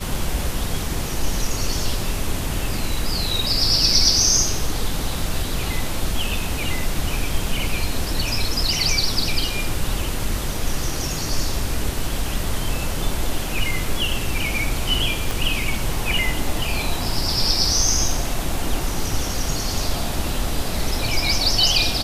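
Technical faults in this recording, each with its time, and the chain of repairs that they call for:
0:15.31: click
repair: click removal

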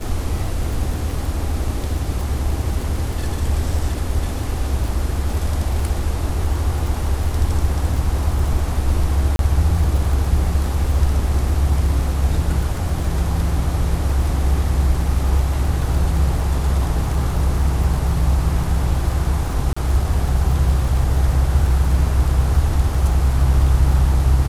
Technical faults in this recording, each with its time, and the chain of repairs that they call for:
surface crackle 30 per second −25 dBFS
0:09.36–0:09.39: drop-out 32 ms
0:19.73–0:19.77: drop-out 35 ms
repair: click removal
repair the gap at 0:09.36, 32 ms
repair the gap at 0:19.73, 35 ms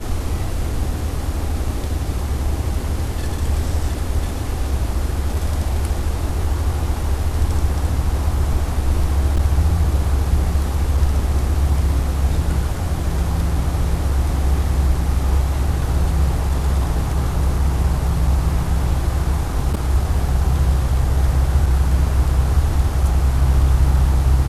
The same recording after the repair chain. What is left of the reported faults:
none of them is left

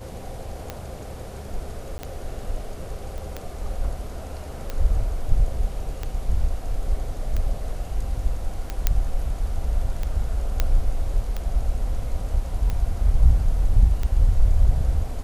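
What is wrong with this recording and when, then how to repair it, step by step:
scratch tick 45 rpm −15 dBFS
0:01.98–0:01.99: drop-out 10 ms
0:03.18: click
0:08.87: click −4 dBFS
0:10.60: click −7 dBFS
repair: click removal
repair the gap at 0:01.98, 10 ms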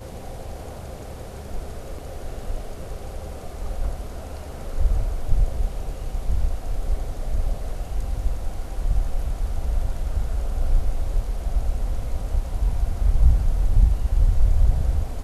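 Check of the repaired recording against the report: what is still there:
none of them is left

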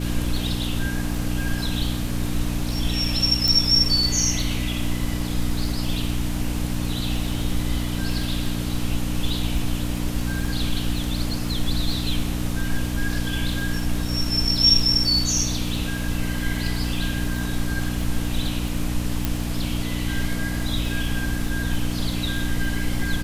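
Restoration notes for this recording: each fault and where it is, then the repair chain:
surface crackle 41 per second −29 dBFS
mains hum 60 Hz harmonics 5 −27 dBFS
0:03.48: click
0:19.25: click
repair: click removal
hum removal 60 Hz, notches 5

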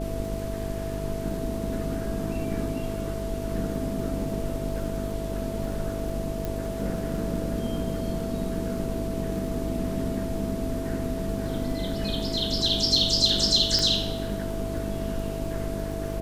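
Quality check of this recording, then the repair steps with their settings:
mains buzz 50 Hz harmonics 9 −33 dBFS
surface crackle 26 per second −35 dBFS
whistle 660 Hz −34 dBFS
0:06.45: click
0:13.79: click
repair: click removal
notch filter 660 Hz, Q 30
hum removal 50 Hz, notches 9

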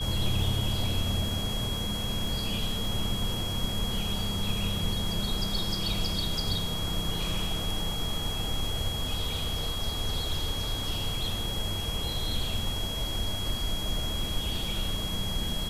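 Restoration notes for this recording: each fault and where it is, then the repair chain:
surface crackle 26 per second −35 dBFS
whistle 3,300 Hz −34 dBFS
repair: click removal
notch filter 3,300 Hz, Q 30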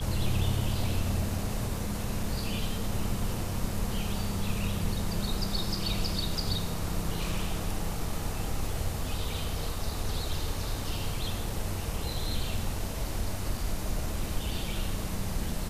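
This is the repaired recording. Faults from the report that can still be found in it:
none of them is left

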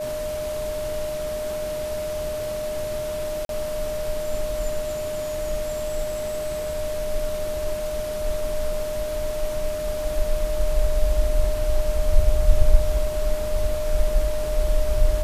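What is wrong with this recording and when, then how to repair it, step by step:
whistle 610 Hz −26 dBFS
0:03.45–0:03.49: drop-out 42 ms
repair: notch filter 610 Hz, Q 30
repair the gap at 0:03.45, 42 ms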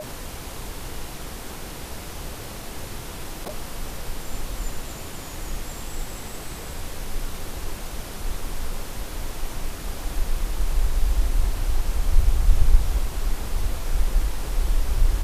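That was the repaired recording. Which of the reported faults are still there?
none of them is left

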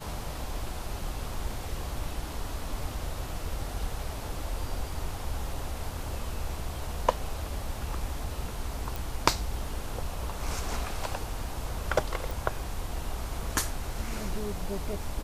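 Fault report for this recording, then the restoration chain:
0:08.96: click
0:12.31: click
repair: click removal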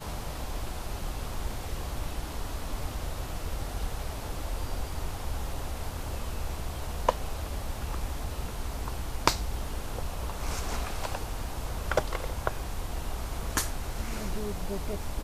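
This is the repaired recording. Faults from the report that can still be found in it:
none of them is left

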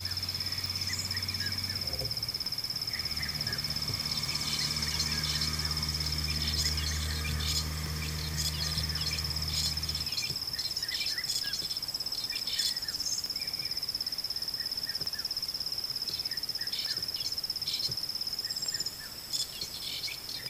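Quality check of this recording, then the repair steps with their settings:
scratch tick 33 1/3 rpm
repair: click removal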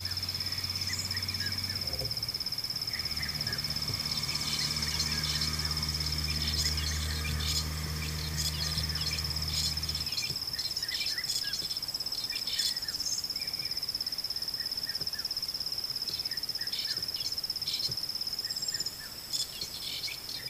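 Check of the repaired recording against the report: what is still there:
none of them is left

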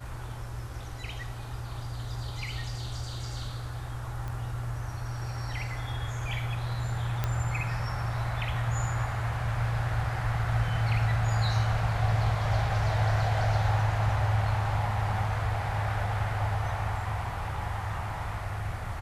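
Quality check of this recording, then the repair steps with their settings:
0:04.28: click
0:07.24: click −15 dBFS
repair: click removal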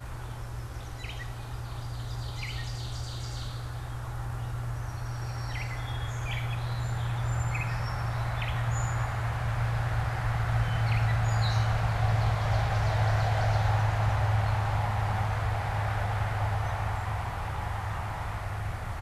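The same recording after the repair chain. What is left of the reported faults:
none of them is left

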